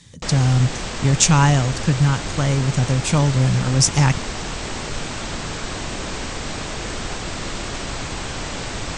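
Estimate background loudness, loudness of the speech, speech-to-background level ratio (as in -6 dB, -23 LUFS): -28.0 LUFS, -18.5 LUFS, 9.5 dB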